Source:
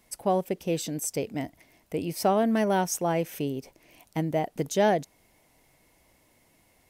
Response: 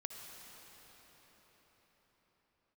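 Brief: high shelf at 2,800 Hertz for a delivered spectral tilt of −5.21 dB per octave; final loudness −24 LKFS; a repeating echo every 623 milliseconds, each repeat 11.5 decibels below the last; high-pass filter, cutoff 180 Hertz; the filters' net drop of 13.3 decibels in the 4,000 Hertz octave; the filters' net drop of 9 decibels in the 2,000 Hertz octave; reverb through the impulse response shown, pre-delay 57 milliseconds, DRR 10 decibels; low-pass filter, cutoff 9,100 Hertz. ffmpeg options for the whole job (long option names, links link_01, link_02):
-filter_complex "[0:a]highpass=180,lowpass=9100,equalizer=frequency=2000:width_type=o:gain=-7,highshelf=frequency=2800:gain=-8.5,equalizer=frequency=4000:width_type=o:gain=-8.5,aecho=1:1:623|1246|1869:0.266|0.0718|0.0194,asplit=2[link_01][link_02];[1:a]atrim=start_sample=2205,adelay=57[link_03];[link_02][link_03]afir=irnorm=-1:irlink=0,volume=-8dB[link_04];[link_01][link_04]amix=inputs=2:normalize=0,volume=6dB"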